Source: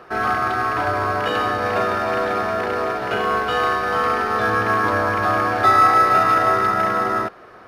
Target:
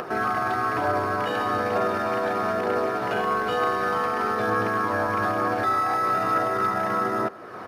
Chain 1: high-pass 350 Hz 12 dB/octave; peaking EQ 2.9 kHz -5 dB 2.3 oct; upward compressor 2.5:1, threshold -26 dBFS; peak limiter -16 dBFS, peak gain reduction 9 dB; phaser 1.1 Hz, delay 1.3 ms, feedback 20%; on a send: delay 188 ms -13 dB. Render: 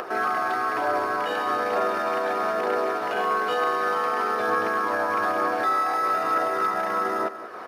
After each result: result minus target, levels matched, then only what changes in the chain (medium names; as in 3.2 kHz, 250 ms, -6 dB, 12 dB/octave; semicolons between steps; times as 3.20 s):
125 Hz band -13.5 dB; echo-to-direct +8 dB
change: high-pass 120 Hz 12 dB/octave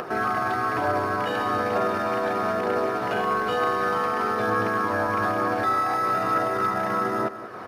echo-to-direct +8 dB
change: delay 188 ms -21 dB